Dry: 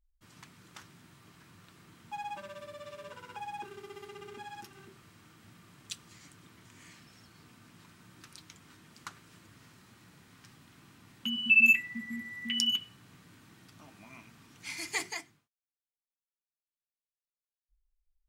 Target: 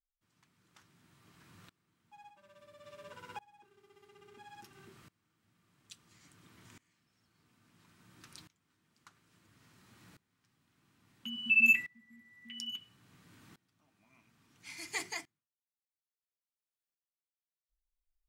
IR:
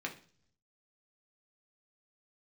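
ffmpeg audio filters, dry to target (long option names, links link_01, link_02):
-filter_complex "[0:a]asplit=3[link_01][link_02][link_03];[link_01]afade=type=out:start_time=2.29:duration=0.02[link_04];[link_02]acompressor=threshold=-44dB:ratio=6,afade=type=in:start_time=2.29:duration=0.02,afade=type=out:start_time=2.83:duration=0.02[link_05];[link_03]afade=type=in:start_time=2.83:duration=0.02[link_06];[link_04][link_05][link_06]amix=inputs=3:normalize=0,aeval=exprs='val(0)*pow(10,-24*if(lt(mod(-0.59*n/s,1),2*abs(-0.59)/1000),1-mod(-0.59*n/s,1)/(2*abs(-0.59)/1000),(mod(-0.59*n/s,1)-2*abs(-0.59)/1000)/(1-2*abs(-0.59)/1000))/20)':channel_layout=same"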